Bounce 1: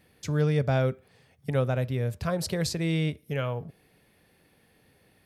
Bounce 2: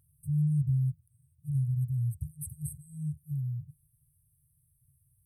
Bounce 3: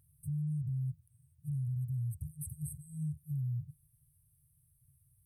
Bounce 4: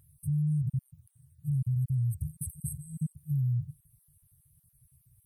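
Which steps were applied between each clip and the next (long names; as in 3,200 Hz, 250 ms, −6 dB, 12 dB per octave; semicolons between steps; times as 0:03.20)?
brick-wall band-stop 160–8,100 Hz
brickwall limiter −31 dBFS, peak gain reduction 10 dB
time-frequency cells dropped at random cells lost 24%; level +7 dB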